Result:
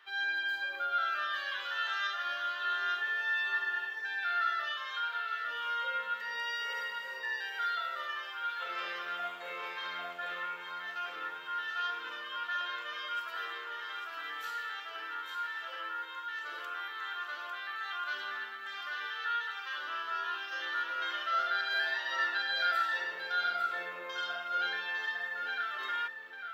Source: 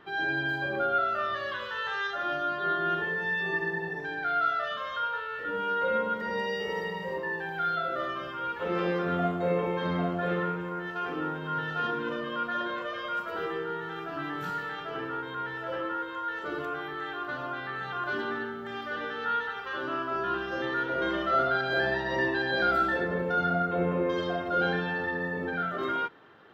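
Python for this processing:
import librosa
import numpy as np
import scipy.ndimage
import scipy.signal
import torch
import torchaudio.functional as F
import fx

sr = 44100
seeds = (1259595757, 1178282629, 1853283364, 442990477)

p1 = scipy.signal.sosfilt(scipy.signal.bessel(2, 2200.0, 'highpass', norm='mag', fs=sr, output='sos'), x)
p2 = p1 + fx.echo_single(p1, sr, ms=850, db=-6.5, dry=0)
y = p2 * librosa.db_to_amplitude(2.5)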